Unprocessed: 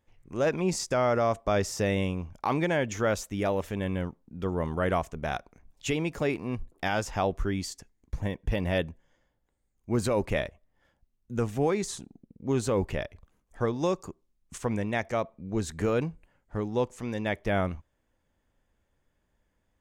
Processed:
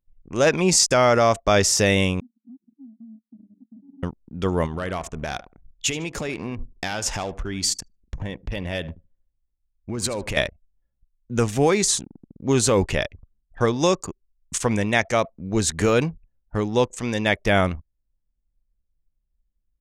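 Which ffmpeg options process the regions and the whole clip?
ffmpeg -i in.wav -filter_complex "[0:a]asettb=1/sr,asplit=3[link_01][link_02][link_03];[link_01]atrim=end=2.204[link_04];[link_02]atrim=start=2.2:end=4.03,asetpts=PTS-STARTPTS,afade=type=in:duration=0.004:curve=qsin,afade=type=out:start_time=1.826:duration=0.004:curve=qsin,asuperpass=centerf=240:order=8:qfactor=4.9,acompressor=threshold=-47dB:ratio=8:attack=3.2:release=140:knee=1:detection=peak[link_05];[link_03]atrim=start=4.026[link_06];[link_04][link_05]acrossfade=duration=0.004:curve1=hsin:curve2=qsin[link_07];[link_07][link_06]acrossfade=duration=0.004:curve1=qsin:curve2=hsin,asettb=1/sr,asplit=3[link_08][link_09][link_10];[link_08]atrim=end=4.664[link_11];[link_09]atrim=start=4.66:end=10.37,asetpts=PTS-STARTPTS,afade=type=in:duration=0.004:curve=qsin,afade=type=out:start_time=5.706:duration=0.004:curve=qsin,acompressor=threshold=-32dB:ratio=6:attack=3.2:release=140:knee=1:detection=peak,aeval=exprs='clip(val(0),-1,0.0316)':channel_layout=same,aecho=1:1:76|152|228|304:0.158|0.0666|0.028|0.0117,atrim=end_sample=251811[link_12];[link_10]atrim=start=10.366[link_13];[link_11][link_12]acrossfade=duration=0.004:curve1=hsin:curve2=qsin[link_14];[link_14][link_13]acrossfade=duration=0.004:curve1=qsin:curve2=hsin,anlmdn=0.01,lowpass=10000,highshelf=frequency=2600:gain=12,volume=7dB" out.wav

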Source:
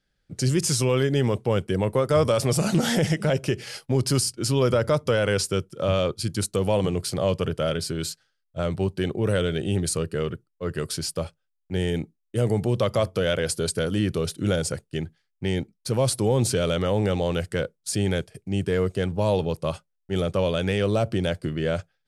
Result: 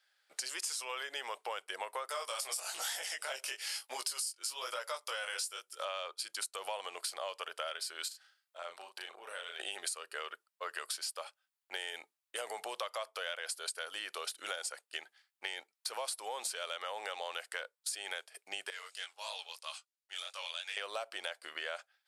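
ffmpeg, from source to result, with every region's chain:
ffmpeg -i in.wav -filter_complex "[0:a]asettb=1/sr,asplit=3[link_01][link_02][link_03];[link_01]atrim=end=2.094[link_04];[link_02]atrim=start=2.09:end=5.85,asetpts=PTS-STARTPTS,afade=type=in:duration=0.004:curve=qsin,afade=type=out:start_time=3.756:duration=0.004:curve=qsin,flanger=delay=15.5:depth=7.6:speed=1.1,highshelf=frequency=4000:gain=11[link_05];[link_03]atrim=start=5.846[link_06];[link_04][link_05]acrossfade=duration=0.004:curve1=hsin:curve2=qsin[link_07];[link_07][link_06]acrossfade=duration=0.004:curve1=qsin:curve2=hsin,asettb=1/sr,asplit=3[link_08][link_09][link_10];[link_08]atrim=end=8.084[link_11];[link_09]atrim=start=8.08:end=9.6,asetpts=PTS-STARTPTS,afade=type=in:duration=0.004:curve=qsin,afade=type=out:start_time=1.516:duration=0.004:curve=qsin,acompressor=threshold=-42dB:ratio=3:attack=3.2:release=140:knee=1:detection=peak,asplit=2[link_12][link_13];[link_13]adelay=35,volume=-4dB[link_14];[link_12][link_14]amix=inputs=2:normalize=0,atrim=end_sample=67032[link_15];[link_10]atrim=start=9.596[link_16];[link_11][link_15]acrossfade=duration=0.004:curve1=hsin:curve2=qsin[link_17];[link_17][link_16]acrossfade=duration=0.004:curve1=qsin:curve2=hsin,asettb=1/sr,asplit=3[link_18][link_19][link_20];[link_18]atrim=end=18.704[link_21];[link_19]atrim=start=18.7:end=20.77,asetpts=PTS-STARTPTS,afade=type=in:duration=0.004:curve=qsin,afade=type=out:start_time=2.066:duration=0.004:curve=qsin,flanger=delay=17:depth=6.8:speed=3,bandpass=frequency=5900:width_type=q:width=0.82[link_22];[link_20]atrim=start=20.766[link_23];[link_21][link_22]acrossfade=duration=0.004:curve1=hsin:curve2=qsin[link_24];[link_24][link_23]acrossfade=duration=0.004:curve1=qsin:curve2=hsin,highpass=frequency=770:width=0.5412,highpass=frequency=770:width=1.3066,equalizer=frequency=6100:width_type=o:width=0.32:gain=-3.5,acompressor=threshold=-42dB:ratio=6,volume=5dB" out.wav

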